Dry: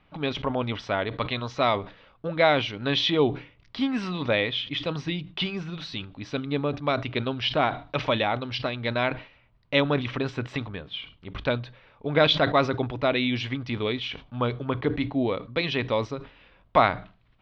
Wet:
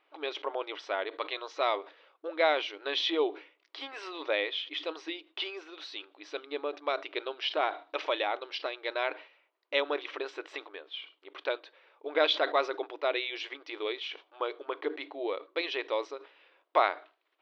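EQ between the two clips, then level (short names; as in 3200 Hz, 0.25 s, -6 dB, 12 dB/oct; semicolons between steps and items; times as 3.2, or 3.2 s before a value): brick-wall FIR high-pass 300 Hz; -5.5 dB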